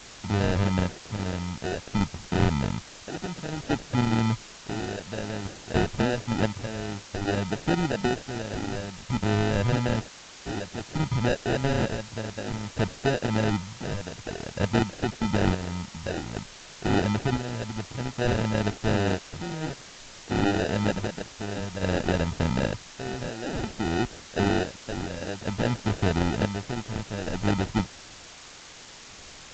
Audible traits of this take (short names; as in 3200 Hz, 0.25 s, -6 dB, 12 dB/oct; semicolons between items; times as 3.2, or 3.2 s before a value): aliases and images of a low sample rate 1100 Hz, jitter 0%; chopped level 0.55 Hz, depth 60%, duty 55%; a quantiser's noise floor 8-bit, dither triangular; G.722